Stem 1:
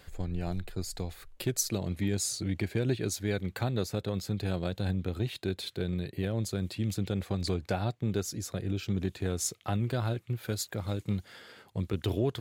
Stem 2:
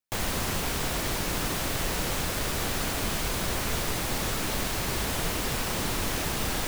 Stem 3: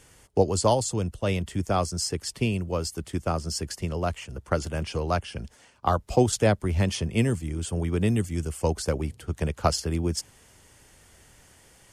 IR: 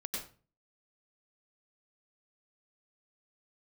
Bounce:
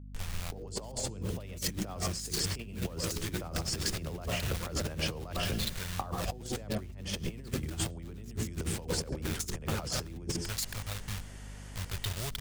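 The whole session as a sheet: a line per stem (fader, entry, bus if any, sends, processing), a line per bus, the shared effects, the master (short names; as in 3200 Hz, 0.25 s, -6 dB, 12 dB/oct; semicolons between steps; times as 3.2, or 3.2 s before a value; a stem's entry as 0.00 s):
+0.5 dB, 0.00 s, send -22 dB, level-crossing sampler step -33 dBFS; passive tone stack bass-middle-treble 10-0-10
-16.5 dB, 1.10 s, muted 6.6–7.13, no send, passive tone stack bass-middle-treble 5-5-5
-3.0 dB, 0.15 s, send -9.5 dB, high shelf 11000 Hz -12 dB; notches 60/120/180/240/300/360/420/480 Hz; limiter -17.5 dBFS, peak gain reduction 10.5 dB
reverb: on, RT60 0.35 s, pre-delay 88 ms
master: negative-ratio compressor -35 dBFS, ratio -0.5; hum 50 Hz, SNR 10 dB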